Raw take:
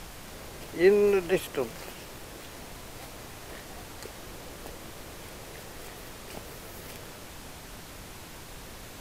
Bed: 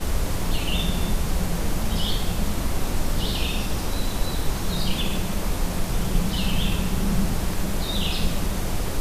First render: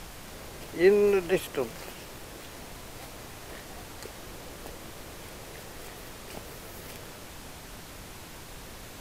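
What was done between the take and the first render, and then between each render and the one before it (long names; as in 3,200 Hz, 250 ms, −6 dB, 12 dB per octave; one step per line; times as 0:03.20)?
no processing that can be heard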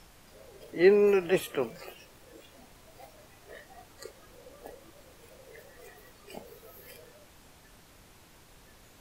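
noise reduction from a noise print 12 dB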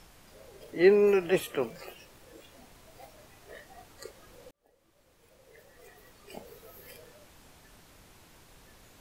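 0:04.51–0:06.49: fade in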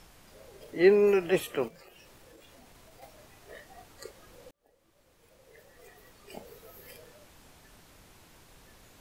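0:01.68–0:03.02: downward compressor, threshold −50 dBFS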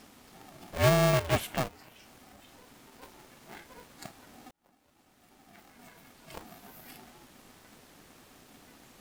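soft clipping −17 dBFS, distortion −15 dB
ring modulator with a square carrier 250 Hz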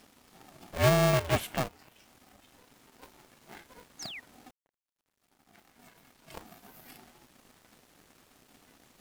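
dead-zone distortion −59.5 dBFS
0:03.99–0:04.20: sound drawn into the spectrogram fall 1,800–6,900 Hz −42 dBFS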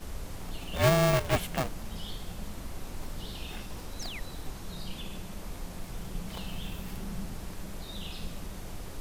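mix in bed −15 dB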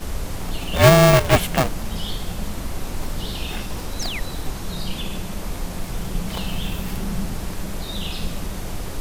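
level +11.5 dB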